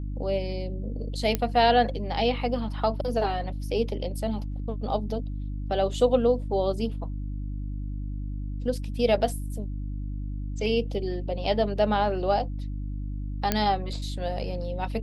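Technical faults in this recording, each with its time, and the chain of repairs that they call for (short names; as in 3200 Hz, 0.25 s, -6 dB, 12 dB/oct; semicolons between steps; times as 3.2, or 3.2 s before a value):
hum 50 Hz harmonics 6 -32 dBFS
1.35 pop -10 dBFS
13.52 pop -7 dBFS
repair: de-click; de-hum 50 Hz, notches 6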